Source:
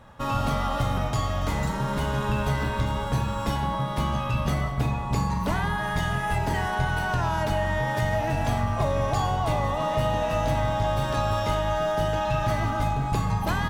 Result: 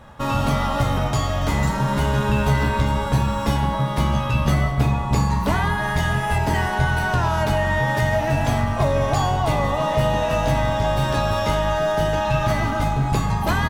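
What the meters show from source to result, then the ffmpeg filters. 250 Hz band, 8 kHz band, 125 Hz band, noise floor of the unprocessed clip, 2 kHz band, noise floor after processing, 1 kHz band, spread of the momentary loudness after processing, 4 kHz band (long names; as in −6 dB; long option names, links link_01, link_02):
+6.0 dB, +6.0 dB, +5.5 dB, −29 dBFS, +6.0 dB, −24 dBFS, +4.0 dB, 2 LU, +5.0 dB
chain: -filter_complex "[0:a]asplit=2[link_01][link_02];[link_02]adelay=14,volume=-8.5dB[link_03];[link_01][link_03]amix=inputs=2:normalize=0,volume=5dB"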